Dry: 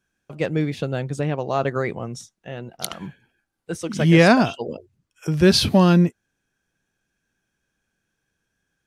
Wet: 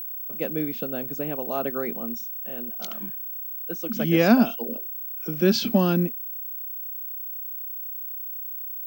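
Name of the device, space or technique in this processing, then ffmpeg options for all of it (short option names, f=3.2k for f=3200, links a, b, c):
old television with a line whistle: -af "highpass=f=190:w=0.5412,highpass=f=190:w=1.3066,equalizer=f=230:t=q:w=4:g=9,equalizer=f=980:t=q:w=4:g=-5,equalizer=f=1.9k:t=q:w=4:g=-6,equalizer=f=4k:t=q:w=4:g=-5,lowpass=f=6.8k:w=0.5412,lowpass=f=6.8k:w=1.3066,aeval=exprs='val(0)+0.0501*sin(2*PI*15734*n/s)':c=same,volume=-5dB"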